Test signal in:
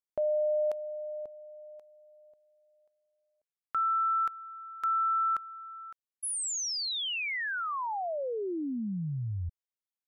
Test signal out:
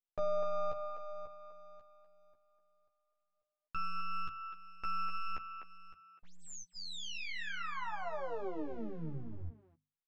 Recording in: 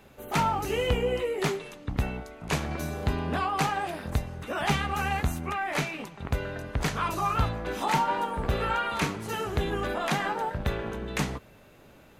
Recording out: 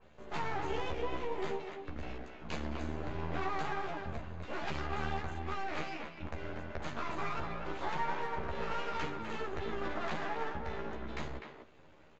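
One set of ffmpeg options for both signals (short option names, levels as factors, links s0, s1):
-filter_complex "[0:a]alimiter=limit=0.1:level=0:latency=1:release=118,asuperstop=centerf=5500:order=12:qfactor=4.8,highshelf=f=4800:g=-8.5,acrossover=split=270[s0][s1];[s0]acompressor=threshold=0.0224:ratio=6:knee=2.83:detection=peak[s2];[s2][s1]amix=inputs=2:normalize=0,aeval=exprs='max(val(0),0)':c=same,tremolo=f=180:d=0.333,flanger=delay=1.8:depth=1.9:regen=-80:speed=0.24:shape=sinusoidal,asplit=2[s3][s4];[s4]adelay=13,volume=0.708[s5];[s3][s5]amix=inputs=2:normalize=0,aresample=16000,aresample=44100,bandreject=f=50:t=h:w=6,bandreject=f=100:t=h:w=6,bandreject=f=150:t=h:w=6,bandreject=f=200:t=h:w=6,bandreject=f=250:t=h:w=6,asplit=2[s6][s7];[s7]adelay=250,highpass=300,lowpass=3400,asoftclip=type=hard:threshold=0.0316,volume=0.501[s8];[s6][s8]amix=inputs=2:normalize=0,adynamicequalizer=threshold=0.00224:dfrequency=2500:dqfactor=0.7:tfrequency=2500:tqfactor=0.7:attack=5:release=100:ratio=0.375:range=1.5:mode=cutabove:tftype=highshelf,volume=1.19"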